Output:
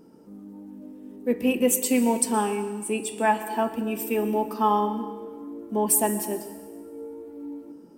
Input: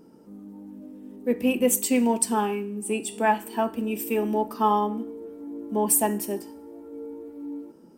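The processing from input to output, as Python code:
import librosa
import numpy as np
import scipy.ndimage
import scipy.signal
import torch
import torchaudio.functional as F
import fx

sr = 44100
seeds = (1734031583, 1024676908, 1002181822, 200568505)

y = fx.rev_plate(x, sr, seeds[0], rt60_s=1.4, hf_ratio=1.0, predelay_ms=105, drr_db=12.0)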